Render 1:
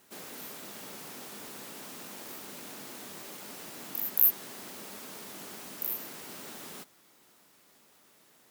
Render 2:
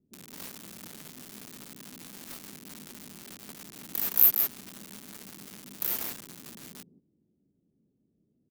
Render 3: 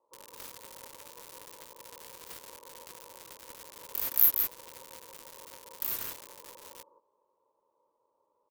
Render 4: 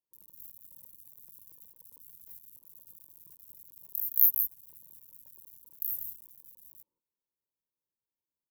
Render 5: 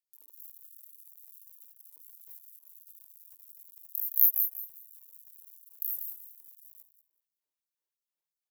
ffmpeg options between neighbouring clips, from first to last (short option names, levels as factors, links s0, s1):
-filter_complex "[0:a]aecho=1:1:165:0.422,acrossover=split=300[s0][s1];[s1]acrusher=bits=5:mix=0:aa=0.000001[s2];[s0][s2]amix=inputs=2:normalize=0,volume=1.41"
-af "aeval=exprs='val(0)*sin(2*PI*730*n/s)':c=same"
-af "firequalizer=gain_entry='entry(160,0);entry(490,-26);entry(1100,-26);entry(13000,8)':delay=0.05:min_phase=1,volume=0.422"
-af "aecho=1:1:190|380|570:0.251|0.0527|0.0111,afftfilt=real='re*gte(b*sr/1024,240*pow(4500/240,0.5+0.5*sin(2*PI*2.9*pts/sr)))':imag='im*gte(b*sr/1024,240*pow(4500/240,0.5+0.5*sin(2*PI*2.9*pts/sr)))':win_size=1024:overlap=0.75"